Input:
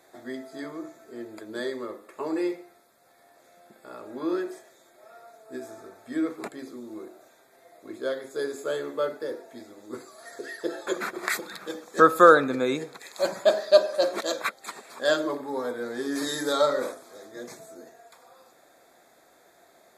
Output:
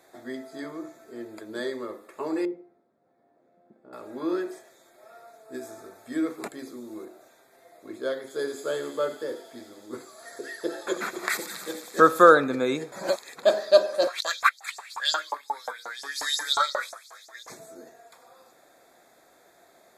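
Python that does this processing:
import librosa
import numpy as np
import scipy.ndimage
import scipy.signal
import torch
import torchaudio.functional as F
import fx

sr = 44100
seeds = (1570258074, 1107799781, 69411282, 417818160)

y = fx.bandpass_q(x, sr, hz=230.0, q=0.9, at=(2.45, 3.93))
y = fx.high_shelf(y, sr, hz=5400.0, db=5.5, at=(5.54, 7.05))
y = fx.echo_wet_highpass(y, sr, ms=89, feedback_pct=82, hz=4000.0, wet_db=-6.0, at=(8.26, 12.22), fade=0.02)
y = fx.filter_lfo_highpass(y, sr, shape='saw_up', hz=5.6, low_hz=780.0, high_hz=6700.0, q=4.4, at=(14.07, 17.5))
y = fx.edit(y, sr, fx.reverse_span(start_s=12.92, length_s=0.51), tone=tone)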